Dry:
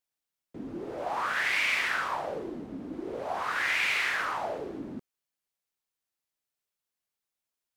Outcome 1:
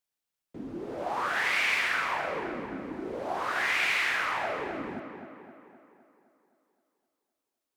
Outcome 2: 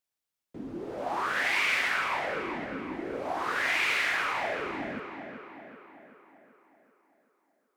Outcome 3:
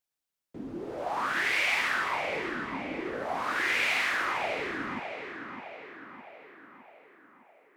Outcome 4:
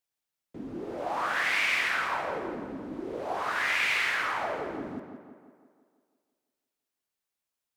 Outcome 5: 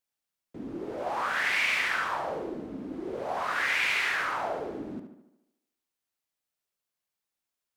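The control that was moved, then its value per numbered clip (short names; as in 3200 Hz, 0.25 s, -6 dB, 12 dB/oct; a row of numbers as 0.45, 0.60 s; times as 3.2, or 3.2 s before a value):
tape echo, time: 259, 383, 610, 168, 72 ms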